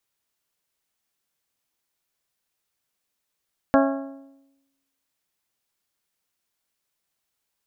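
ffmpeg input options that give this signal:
ffmpeg -f lavfi -i "aevalsrc='0.178*pow(10,-3*t/0.98)*sin(2*PI*274*t)+0.141*pow(10,-3*t/0.796)*sin(2*PI*548*t)+0.112*pow(10,-3*t/0.754)*sin(2*PI*657.6*t)+0.0891*pow(10,-3*t/0.705)*sin(2*PI*822*t)+0.0708*pow(10,-3*t/0.647)*sin(2*PI*1096*t)+0.0562*pow(10,-3*t/0.605)*sin(2*PI*1370*t)+0.0447*pow(10,-3*t/0.573)*sin(2*PI*1644*t)':duration=1.55:sample_rate=44100" out.wav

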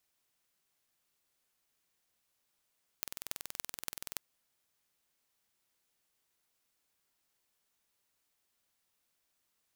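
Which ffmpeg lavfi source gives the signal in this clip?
ffmpeg -f lavfi -i "aevalsrc='0.422*eq(mod(n,2090),0)*(0.5+0.5*eq(mod(n,12540),0))':duration=1.17:sample_rate=44100" out.wav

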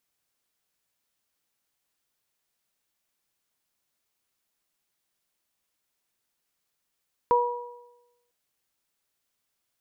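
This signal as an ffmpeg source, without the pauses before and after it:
ffmpeg -f lavfi -i "aevalsrc='0.1*pow(10,-3*t/1.02)*sin(2*PI*483*t)+0.141*pow(10,-3*t/0.86)*sin(2*PI*966*t)':duration=1:sample_rate=44100" out.wav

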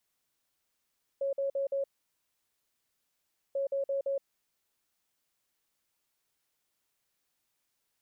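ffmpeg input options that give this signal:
ffmpeg -f lavfi -i "aevalsrc='0.0398*sin(2*PI*551*t)*clip(min(mod(mod(t,2.34),0.17),0.12-mod(mod(t,2.34),0.17))/0.005,0,1)*lt(mod(t,2.34),0.68)':duration=4.68:sample_rate=44100" out.wav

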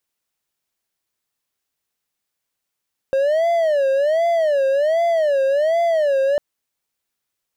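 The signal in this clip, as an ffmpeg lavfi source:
ffmpeg -f lavfi -i "aevalsrc='0.237*(1-4*abs(mod((609.5*t-73.5/(2*PI*1.3)*sin(2*PI*1.3*t))+0.25,1)-0.5))':duration=3.25:sample_rate=44100" out.wav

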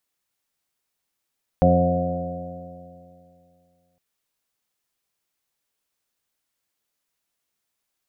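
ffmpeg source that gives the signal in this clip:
ffmpeg -f lavfi -i "aevalsrc='0.0944*pow(10,-3*t/2.54)*sin(2*PI*86.56*t)+0.15*pow(10,-3*t/2.54)*sin(2*PI*173.52*t)+0.075*pow(10,-3*t/2.54)*sin(2*PI*261.25*t)+0.0237*pow(10,-3*t/2.54)*sin(2*PI*350.13*t)+0.02*pow(10,-3*t/2.54)*sin(2*PI*440.53*t)+0.158*pow(10,-3*t/2.54)*sin(2*PI*532.83*t)+0.0473*pow(10,-3*t/2.54)*sin(2*PI*627.36*t)+0.1*pow(10,-3*t/2.54)*sin(2*PI*724.45*t)':duration=2.36:sample_rate=44100" out.wav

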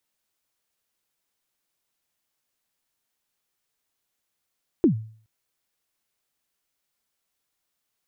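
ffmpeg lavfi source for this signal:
ffmpeg -f lavfi -i "aevalsrc='0.282*pow(10,-3*t/0.48)*sin(2*PI*(380*0.104/log(110/380)*(exp(log(110/380)*min(t,0.104)/0.104)-1)+110*max(t-0.104,0)))':duration=0.42:sample_rate=44100" out.wav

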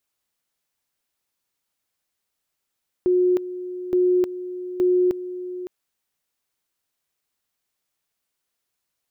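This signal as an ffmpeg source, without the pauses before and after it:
ffmpeg -f lavfi -i "aevalsrc='pow(10,(-15-13.5*gte(mod(t,0.87),0.31))/20)*sin(2*PI*362*t)':duration=2.61:sample_rate=44100" out.wav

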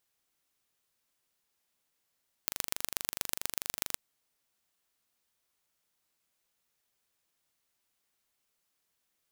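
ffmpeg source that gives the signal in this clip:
ffmpeg -f lavfi -i "aevalsrc='0.794*eq(mod(n,1793),0)*(0.5+0.5*eq(mod(n,5379),0))':duration=1.47:sample_rate=44100" out.wav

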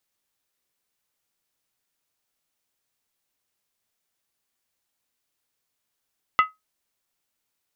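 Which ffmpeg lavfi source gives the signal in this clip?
ffmpeg -f lavfi -i "aevalsrc='0.299*pow(10,-3*t/0.18)*sin(2*PI*1270*t)+0.133*pow(10,-3*t/0.143)*sin(2*PI*2024.4*t)+0.0596*pow(10,-3*t/0.123)*sin(2*PI*2712.7*t)+0.0266*pow(10,-3*t/0.119)*sin(2*PI*2915.9*t)+0.0119*pow(10,-3*t/0.111)*sin(2*PI*3369.3*t)':duration=0.63:sample_rate=44100" out.wav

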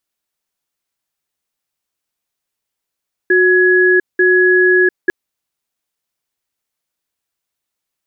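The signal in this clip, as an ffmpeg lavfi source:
ffmpeg -f lavfi -i "aevalsrc='0.299*(sin(2*PI*366*t)+sin(2*PI*1680*t))*clip(min(mod(t,0.89),0.7-mod(t,0.89))/0.005,0,1)':duration=1.8:sample_rate=44100" out.wav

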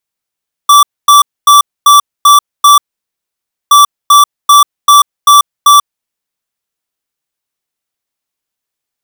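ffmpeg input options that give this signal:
ffmpeg -f lavfi -i "aevalsrc='0.708*(2*lt(mod(1160*t,1),0.5)-1)*clip(min(mod(mod(t,3.02),0.39),0.14-mod(mod(t,3.02),0.39))/0.005,0,1)*lt(mod(t,3.02),2.34)':duration=6.04:sample_rate=44100" out.wav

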